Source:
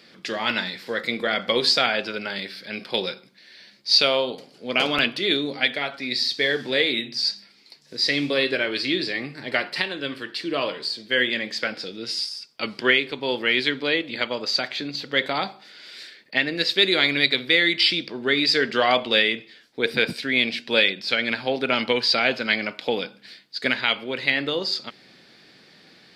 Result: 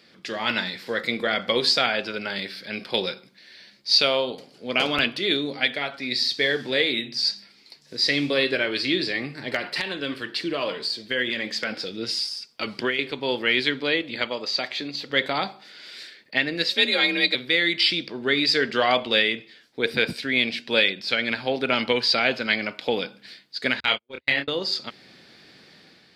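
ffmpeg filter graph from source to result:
ffmpeg -i in.wav -filter_complex "[0:a]asettb=1/sr,asplit=3[link_01][link_02][link_03];[link_01]atrim=end=9.544[link_04];[link_02]atrim=start=9.54:end=12.99,asetpts=PTS-STARTPTS,afade=type=in:duration=0.004:curve=qsin,afade=type=out:start_time=3.446:duration=0.004:curve=qsin,acompressor=threshold=-23dB:ratio=4:attack=3.2:release=140:knee=1:detection=peak,aphaser=in_gain=1:out_gain=1:delay=4.7:decay=0.25:speed=1.2:type=sinusoidal,aeval=exprs='clip(val(0),-1,0.2)':channel_layout=same[link_05];[link_03]atrim=start=12.986[link_06];[link_04][link_05]acrossfade=duration=0.004:curve1=hsin:curve2=qsin[link_07];[link_07][link_06]acrossfade=duration=0.004:curve1=qsin:curve2=hsin,asettb=1/sr,asplit=3[link_08][link_09][link_10];[link_08]atrim=end=14.304[link_11];[link_09]atrim=start=14.3:end=15.1,asetpts=PTS-STARTPTS,afade=type=in:duration=0.004:curve=qsin,afade=type=out:start_time=0.796:duration=0.004:curve=qsin,bandreject=frequency=1500:width=8.2,acrossover=split=5500[link_12][link_13];[link_13]acompressor=threshold=-36dB:ratio=4:attack=1:release=60[link_14];[link_12][link_14]amix=inputs=2:normalize=0,lowshelf=frequency=130:gain=-11.5[link_15];[link_10]atrim=start=15.096[link_16];[link_11][link_15]acrossfade=duration=0.004:curve1=hsin:curve2=qsin[link_17];[link_17][link_16]acrossfade=duration=0.004:curve1=qsin:curve2=hsin,asettb=1/sr,asplit=3[link_18][link_19][link_20];[link_18]atrim=end=16.704[link_21];[link_19]atrim=start=16.7:end=17.35,asetpts=PTS-STARTPTS,afade=type=in:duration=0.004:curve=qsin,afade=type=out:start_time=0.646:duration=0.004:curve=qsin,afreqshift=42,aecho=1:1:3.7:0.75,atrim=end_sample=28665[link_22];[link_20]atrim=start=17.346[link_23];[link_21][link_22]acrossfade=duration=0.004:curve1=hsin:curve2=qsin[link_24];[link_24][link_23]acrossfade=duration=0.004:curve1=qsin:curve2=hsin,asettb=1/sr,asplit=3[link_25][link_26][link_27];[link_25]atrim=end=23.804[link_28];[link_26]atrim=start=23.8:end=24.48,asetpts=PTS-STARTPTS,afade=type=in:duration=0.004:curve=qsin,afade=type=out:start_time=0.676:duration=0.004:curve=qsin,agate=range=-50dB:threshold=-26dB:ratio=16:release=100:detection=peak,asplit=2[link_29][link_30];[link_30]adelay=28,volume=-4dB[link_31];[link_29][link_31]amix=inputs=2:normalize=0,atrim=end_sample=29988[link_32];[link_27]atrim=start=24.476[link_33];[link_28][link_32]acrossfade=duration=0.004:curve1=hsin:curve2=qsin[link_34];[link_34][link_33]acrossfade=duration=0.004:curve1=qsin:curve2=hsin,equalizer=frequency=77:width_type=o:width=0.77:gain=6.5,dynaudnorm=framelen=110:gausssize=7:maxgain=5dB,volume=-4dB" out.wav

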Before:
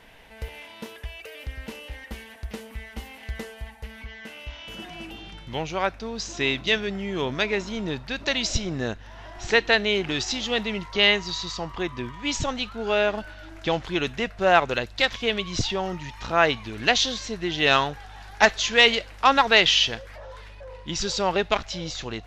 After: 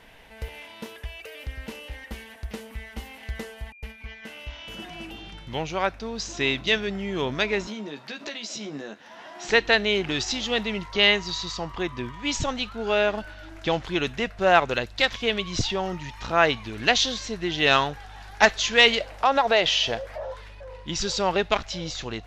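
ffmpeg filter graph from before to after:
ffmpeg -i in.wav -filter_complex "[0:a]asettb=1/sr,asplit=3[link_01][link_02][link_03];[link_01]atrim=end=3.724[link_04];[link_02]atrim=start=3.72:end=4.24,asetpts=PTS-STARTPTS,afade=type=in:duration=0.004:curve=qsin,afade=type=out:start_time=0.516:duration=0.004:curve=qsin,agate=range=-38dB:threshold=-43dB:ratio=16:release=100:detection=peak,aeval=exprs='val(0)+0.00447*sin(2*PI*2400*n/s)':channel_layout=same[link_05];[link_03]atrim=start=4.236[link_06];[link_04][link_05]acrossfade=duration=0.004:curve1=hsin:curve2=qsin[link_07];[link_07][link_06]acrossfade=duration=0.004:curve1=qsin:curve2=hsin,asettb=1/sr,asplit=3[link_08][link_09][link_10];[link_08]atrim=end=7.674[link_11];[link_09]atrim=start=7.67:end=9.48,asetpts=PTS-STARTPTS,afade=type=in:duration=0.004:curve=qsin,afade=type=out:start_time=1.806:duration=0.004:curve=qsin,highpass=frequency=190:width=0.5412,highpass=frequency=190:width=1.3066,acompressor=threshold=-33dB:ratio=5:attack=3.2:release=140:knee=1:detection=peak,asplit=2[link_12][link_13];[link_13]adelay=14,volume=-5dB[link_14];[link_12][link_14]amix=inputs=2:normalize=0,atrim=end_sample=79821[link_15];[link_10]atrim=start=9.476[link_16];[link_11][link_15]acrossfade=duration=0.004:curve1=hsin:curve2=qsin[link_17];[link_17][link_16]acrossfade=duration=0.004:curve1=qsin:curve2=hsin,asettb=1/sr,asplit=3[link_18][link_19][link_20];[link_18]atrim=end=19.004[link_21];[link_19]atrim=start=19:end=20.34,asetpts=PTS-STARTPTS,afade=type=in:duration=0.004:curve=qsin,afade=type=out:start_time=1.336:duration=0.004:curve=qsin,equalizer=frequency=640:width_type=o:width=0.97:gain=11.5,acompressor=threshold=-21dB:ratio=2:attack=3.2:release=140:knee=1:detection=peak[link_22];[link_20]atrim=start=20.336[link_23];[link_21][link_22]acrossfade=duration=0.004:curve1=hsin:curve2=qsin[link_24];[link_24][link_23]acrossfade=duration=0.004:curve1=qsin:curve2=hsin" out.wav

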